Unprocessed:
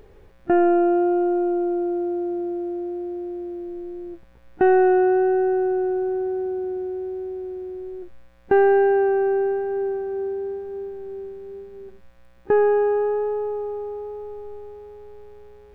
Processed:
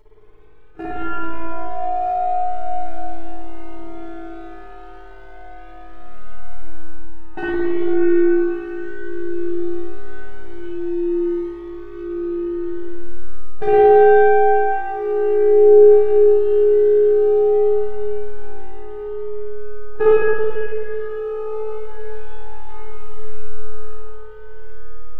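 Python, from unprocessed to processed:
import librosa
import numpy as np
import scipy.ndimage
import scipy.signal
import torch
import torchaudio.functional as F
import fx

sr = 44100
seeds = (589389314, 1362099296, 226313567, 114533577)

p1 = fx.stretch_grains(x, sr, factor=1.6, grain_ms=35.0)
p2 = fx.peak_eq(p1, sr, hz=210.0, db=-12.5, octaves=0.4)
p3 = p2 + fx.echo_feedback(p2, sr, ms=208, feedback_pct=60, wet_db=-16.5, dry=0)
p4 = fx.leveller(p3, sr, passes=1)
p5 = p4 + 0.43 * np.pad(p4, (int(4.7 * sr / 1000.0), 0))[:len(p4)]
p6 = fx.rider(p5, sr, range_db=4, speed_s=0.5)
p7 = fx.hum_notches(p6, sr, base_hz=50, count=8)
p8 = fx.comb_fb(p7, sr, f0_hz=83.0, decay_s=1.9, harmonics='all', damping=0.0, mix_pct=50)
p9 = fx.rev_spring(p8, sr, rt60_s=2.7, pass_ms=(55,), chirp_ms=75, drr_db=-9.0)
p10 = fx.comb_cascade(p9, sr, direction='rising', hz=0.26)
y = p10 * librosa.db_to_amplitude(2.0)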